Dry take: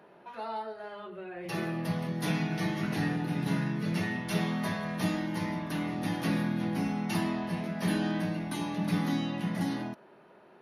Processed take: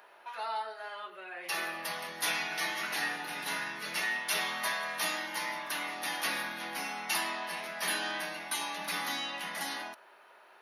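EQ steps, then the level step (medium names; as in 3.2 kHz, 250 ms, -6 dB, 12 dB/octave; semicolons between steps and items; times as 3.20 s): high-pass 980 Hz 12 dB/octave; treble shelf 7.4 kHz +6.5 dB; +5.5 dB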